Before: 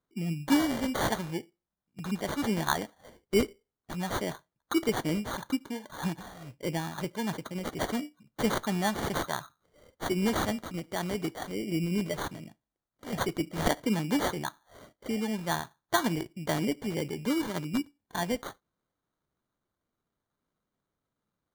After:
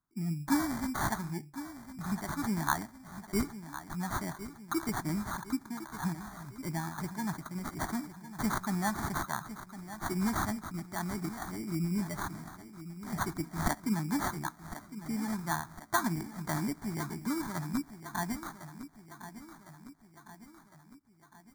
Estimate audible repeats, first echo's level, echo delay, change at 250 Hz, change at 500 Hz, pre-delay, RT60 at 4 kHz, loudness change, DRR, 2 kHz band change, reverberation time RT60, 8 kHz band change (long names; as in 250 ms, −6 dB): 5, −13.0 dB, 1,057 ms, −3.0 dB, −10.5 dB, no reverb audible, no reverb audible, −3.5 dB, no reverb audible, −2.5 dB, no reverb audible, −1.5 dB